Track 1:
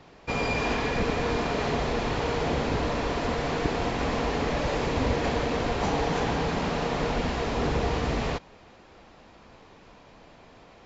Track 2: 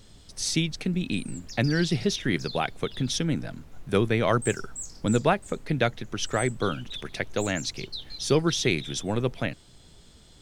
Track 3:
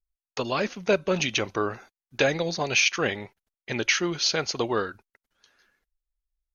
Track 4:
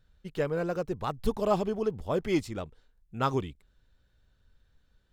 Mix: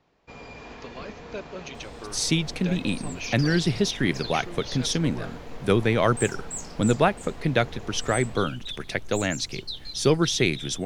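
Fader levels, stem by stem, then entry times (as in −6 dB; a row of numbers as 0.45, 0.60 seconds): −15.5 dB, +2.0 dB, −14.5 dB, muted; 0.00 s, 1.75 s, 0.45 s, muted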